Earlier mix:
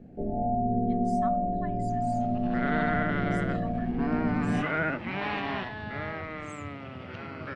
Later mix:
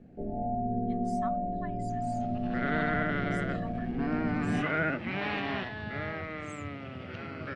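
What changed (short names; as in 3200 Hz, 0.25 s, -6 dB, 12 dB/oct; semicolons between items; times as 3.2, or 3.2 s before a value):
first sound -4.0 dB; second sound: add bell 960 Hz -6.5 dB 0.5 oct; reverb: off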